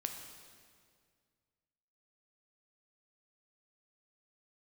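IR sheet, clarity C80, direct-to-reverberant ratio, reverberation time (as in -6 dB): 7.0 dB, 4.0 dB, 2.0 s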